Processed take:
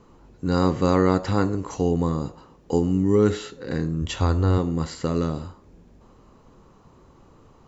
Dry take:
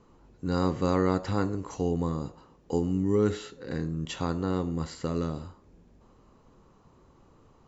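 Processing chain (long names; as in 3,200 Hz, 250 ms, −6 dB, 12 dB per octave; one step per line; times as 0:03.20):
0:04.02–0:04.58: low shelf with overshoot 120 Hz +6 dB, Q 3
level +6 dB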